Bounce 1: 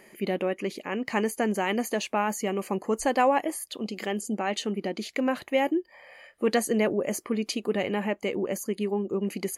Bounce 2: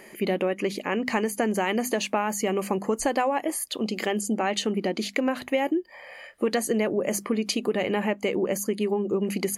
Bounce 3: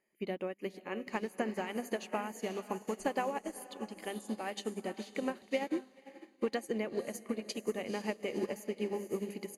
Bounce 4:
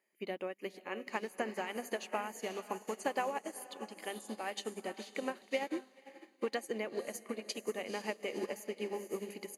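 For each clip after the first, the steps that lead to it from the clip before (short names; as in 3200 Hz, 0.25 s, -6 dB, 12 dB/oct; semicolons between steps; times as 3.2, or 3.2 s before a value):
notches 50/100/150/200/250 Hz; compressor 6:1, threshold -27 dBFS, peak gain reduction 9.5 dB; gain +6 dB
diffused feedback echo 0.495 s, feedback 51%, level -7.5 dB; upward expander 2.5:1, over -38 dBFS; gain -7 dB
HPF 460 Hz 6 dB/oct; gain +1 dB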